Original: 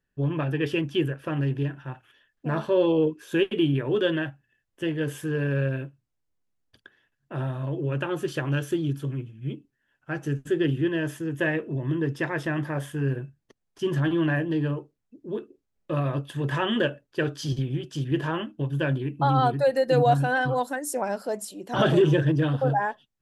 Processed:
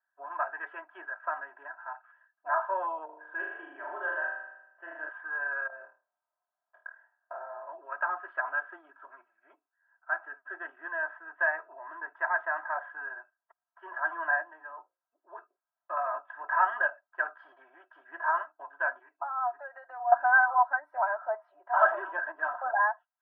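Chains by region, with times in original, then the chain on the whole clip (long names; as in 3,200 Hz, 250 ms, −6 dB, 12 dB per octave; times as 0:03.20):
0:03.05–0:05.09: low-pass filter 1,900 Hz 6 dB per octave + parametric band 1,200 Hz −5.5 dB 1.1 octaves + flutter between parallel walls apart 6.7 metres, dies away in 0.89 s
0:05.67–0:07.69: parametric band 490 Hz +14.5 dB 0.92 octaves + downward compressor 8 to 1, threshold −34 dBFS + flutter between parallel walls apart 4.5 metres, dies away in 0.33 s
0:14.42–0:15.33: mains-hum notches 60/120/180/240/300/360/420/480/540 Hz + downward compressor 4 to 1, threshold −30 dBFS
0:18.99–0:20.12: high-pass filter 260 Hz 24 dB per octave + downward compressor 4 to 1, threshold −32 dBFS + multiband upward and downward expander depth 100%
whole clip: elliptic band-pass filter 720–1,600 Hz, stop band 70 dB; comb filter 3.1 ms, depth 79%; level +3.5 dB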